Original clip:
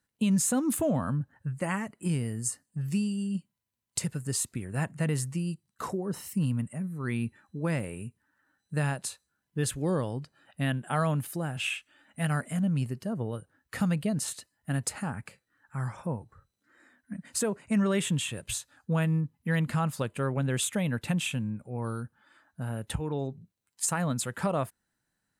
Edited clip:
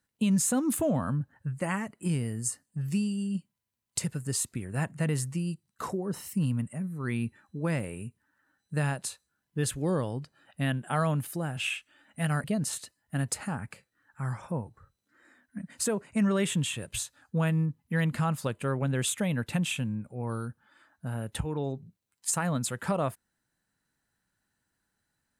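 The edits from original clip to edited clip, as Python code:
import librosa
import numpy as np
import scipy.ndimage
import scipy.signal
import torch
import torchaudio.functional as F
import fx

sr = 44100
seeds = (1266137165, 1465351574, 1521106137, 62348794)

y = fx.edit(x, sr, fx.cut(start_s=12.44, length_s=1.55), tone=tone)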